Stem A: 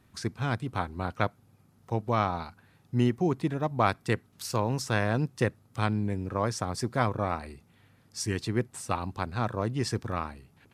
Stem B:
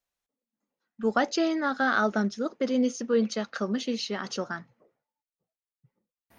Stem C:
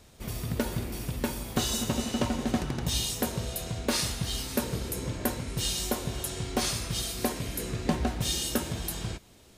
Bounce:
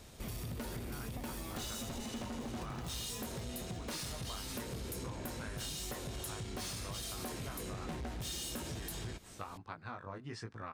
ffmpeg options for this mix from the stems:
-filter_complex "[0:a]lowpass=7.7k,equalizer=f=1.5k:w=0.88:g=7.5,flanger=delay=17.5:depth=4.3:speed=1.2,adelay=500,volume=-11dB[a];[1:a]acrusher=samples=30:mix=1:aa=0.000001,aphaser=in_gain=1:out_gain=1:delay=1.8:decay=0.62:speed=0.84:type=triangular,volume=-16.5dB[b];[2:a]asoftclip=type=tanh:threshold=-30dB,volume=1dB[c];[a][b]amix=inputs=2:normalize=0,acompressor=threshold=-36dB:ratio=6,volume=0dB[d];[c][d]amix=inputs=2:normalize=0,acompressor=threshold=-39dB:ratio=10"

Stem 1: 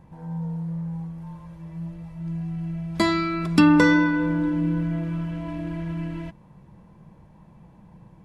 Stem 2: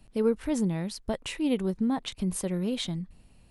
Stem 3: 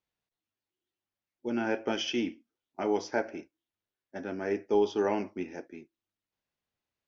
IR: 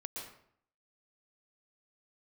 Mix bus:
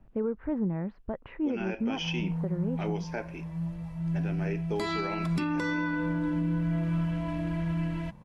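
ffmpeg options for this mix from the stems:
-filter_complex "[0:a]equalizer=f=360:t=o:w=0.49:g=-7,alimiter=limit=-17.5dB:level=0:latency=1:release=296,adelay=1800,volume=0.5dB[a];[1:a]lowpass=f=1.7k:w=0.5412,lowpass=f=1.7k:w=1.3066,volume=-0.5dB[b];[2:a]equalizer=f=2.6k:t=o:w=0.46:g=10.5,volume=-3dB[c];[a][b][c]amix=inputs=3:normalize=0,alimiter=limit=-21.5dB:level=0:latency=1:release=250"

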